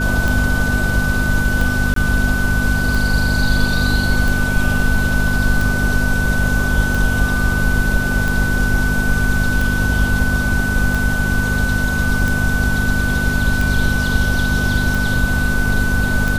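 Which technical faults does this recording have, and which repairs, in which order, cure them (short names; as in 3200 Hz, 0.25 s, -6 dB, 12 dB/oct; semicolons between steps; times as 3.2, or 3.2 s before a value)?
hum 50 Hz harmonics 5 -21 dBFS
tick 45 rpm
tone 1500 Hz -20 dBFS
1.94–1.96 gap 23 ms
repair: de-click; de-hum 50 Hz, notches 5; notch 1500 Hz, Q 30; interpolate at 1.94, 23 ms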